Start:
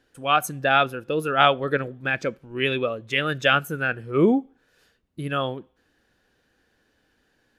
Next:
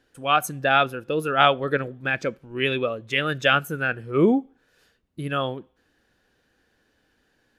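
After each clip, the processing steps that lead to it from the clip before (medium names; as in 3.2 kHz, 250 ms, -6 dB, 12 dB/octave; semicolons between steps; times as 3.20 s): no audible change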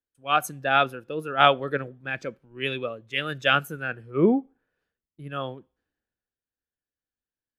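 three bands expanded up and down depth 70%; trim -4.5 dB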